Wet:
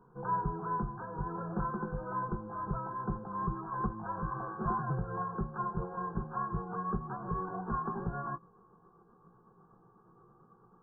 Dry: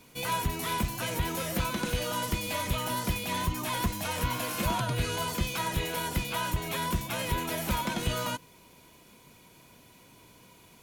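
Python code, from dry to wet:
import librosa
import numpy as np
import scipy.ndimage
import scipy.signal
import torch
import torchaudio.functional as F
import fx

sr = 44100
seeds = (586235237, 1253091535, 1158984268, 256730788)

y = fx.pitch_glide(x, sr, semitones=3.0, runs='starting unshifted')
y = fx.brickwall_lowpass(y, sr, high_hz=1700.0)
y = fx.fixed_phaser(y, sr, hz=400.0, stages=8)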